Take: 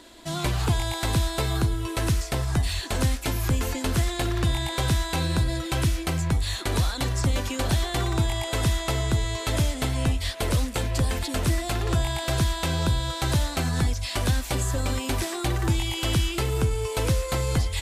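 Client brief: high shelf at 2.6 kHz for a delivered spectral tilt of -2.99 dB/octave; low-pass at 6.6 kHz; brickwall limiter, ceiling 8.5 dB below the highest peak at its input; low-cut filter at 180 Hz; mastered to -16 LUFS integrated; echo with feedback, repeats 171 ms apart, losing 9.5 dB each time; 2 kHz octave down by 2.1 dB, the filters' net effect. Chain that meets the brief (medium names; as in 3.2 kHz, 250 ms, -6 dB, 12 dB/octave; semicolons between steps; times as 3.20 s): high-pass 180 Hz; low-pass 6.6 kHz; peaking EQ 2 kHz -7 dB; treble shelf 2.6 kHz +9 dB; peak limiter -20.5 dBFS; feedback delay 171 ms, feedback 33%, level -9.5 dB; trim +13 dB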